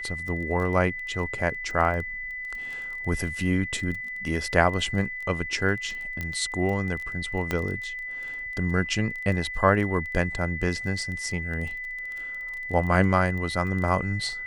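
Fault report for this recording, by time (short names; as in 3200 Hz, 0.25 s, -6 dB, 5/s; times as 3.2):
crackle 16/s -32 dBFS
tone 2000 Hz -32 dBFS
6.21 pop -17 dBFS
7.51 pop -12 dBFS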